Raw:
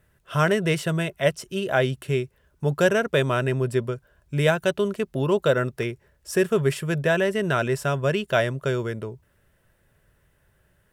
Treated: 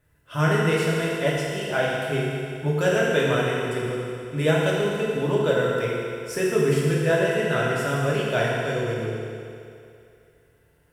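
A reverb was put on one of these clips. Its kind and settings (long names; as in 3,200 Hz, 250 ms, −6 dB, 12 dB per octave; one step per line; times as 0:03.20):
feedback delay network reverb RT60 2.6 s, low-frequency decay 0.8×, high-frequency decay 0.95×, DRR −6 dB
level −6 dB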